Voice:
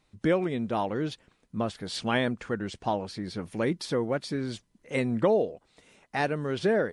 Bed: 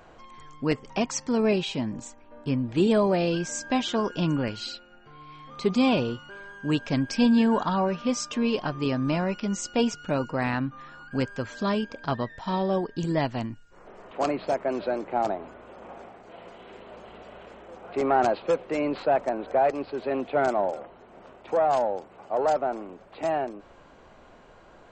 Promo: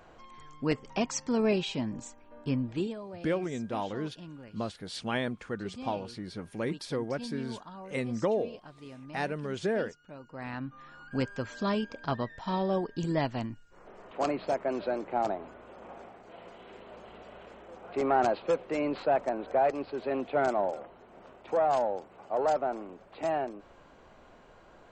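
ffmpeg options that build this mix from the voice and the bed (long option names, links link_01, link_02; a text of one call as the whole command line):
ffmpeg -i stem1.wav -i stem2.wav -filter_complex "[0:a]adelay=3000,volume=-5dB[link_01];[1:a]volume=13.5dB,afade=type=out:start_time=2.62:duration=0.33:silence=0.141254,afade=type=in:start_time=10.23:duration=0.9:silence=0.141254[link_02];[link_01][link_02]amix=inputs=2:normalize=0" out.wav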